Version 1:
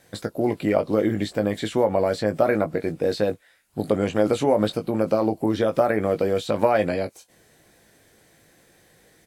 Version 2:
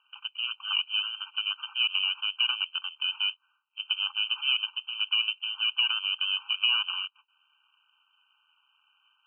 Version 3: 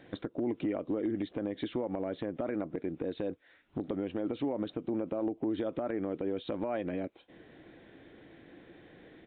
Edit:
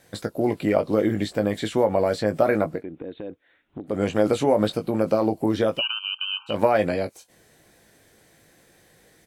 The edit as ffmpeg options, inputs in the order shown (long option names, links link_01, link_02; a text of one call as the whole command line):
ffmpeg -i take0.wav -i take1.wav -i take2.wav -filter_complex "[0:a]asplit=3[link_01][link_02][link_03];[link_01]atrim=end=2.84,asetpts=PTS-STARTPTS[link_04];[2:a]atrim=start=2.68:end=4.02,asetpts=PTS-STARTPTS[link_05];[link_02]atrim=start=3.86:end=5.82,asetpts=PTS-STARTPTS[link_06];[1:a]atrim=start=5.72:end=6.56,asetpts=PTS-STARTPTS[link_07];[link_03]atrim=start=6.46,asetpts=PTS-STARTPTS[link_08];[link_04][link_05]acrossfade=duration=0.16:curve1=tri:curve2=tri[link_09];[link_09][link_06]acrossfade=duration=0.16:curve1=tri:curve2=tri[link_10];[link_10][link_07]acrossfade=duration=0.1:curve1=tri:curve2=tri[link_11];[link_11][link_08]acrossfade=duration=0.1:curve1=tri:curve2=tri" out.wav